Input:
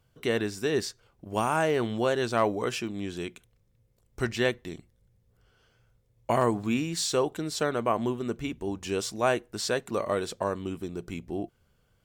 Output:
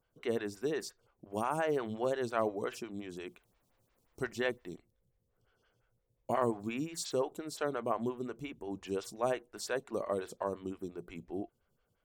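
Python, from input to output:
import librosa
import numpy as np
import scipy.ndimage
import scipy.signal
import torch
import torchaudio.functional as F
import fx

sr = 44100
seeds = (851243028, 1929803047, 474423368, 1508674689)

y = fx.dmg_noise_colour(x, sr, seeds[0], colour='pink', level_db=-68.0, at=(3.25, 4.74), fade=0.02)
y = fx.stagger_phaser(y, sr, hz=5.7)
y = y * librosa.db_to_amplitude(-5.0)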